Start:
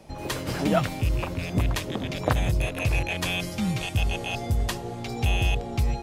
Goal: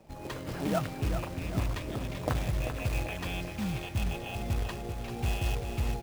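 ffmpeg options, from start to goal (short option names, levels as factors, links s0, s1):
-af "aemphasis=mode=reproduction:type=75kf,acrusher=bits=3:mode=log:mix=0:aa=0.000001,aecho=1:1:390|780|1170|1560|1950|2340|2730:0.398|0.219|0.12|0.0662|0.0364|0.02|0.011,volume=0.447"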